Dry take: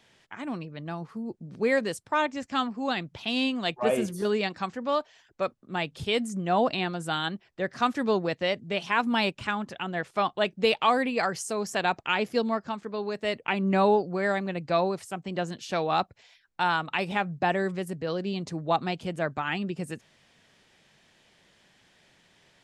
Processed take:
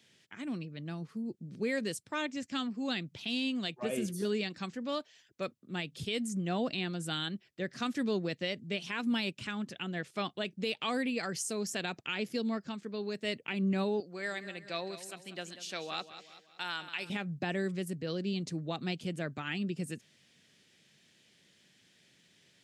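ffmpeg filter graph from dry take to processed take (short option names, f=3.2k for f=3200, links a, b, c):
-filter_complex "[0:a]asettb=1/sr,asplit=3[a][b][c];[a]atrim=end=14.004[d];[b]atrim=start=14:end=17.1,asetpts=PTS-STARTPTS,afade=t=in:d=0.004:c=qsin,afade=t=out:st=3.096:d=0.004:c=qsin,highpass=f=820:p=1,aecho=1:1:190|380|570|760|950:0.224|0.103|0.0474|0.0218|0.01,atrim=end_sample=136710[e];[c]atrim=start=17.096[f];[d][e]acrossfade=d=0.004:c1=hsin:c2=qsin[g];[g][f]acrossfade=d=0.004:c1=qsin:c2=hsin,highpass=130,equalizer=f=890:w=0.79:g=-14.5,alimiter=limit=-23.5dB:level=0:latency=1:release=100"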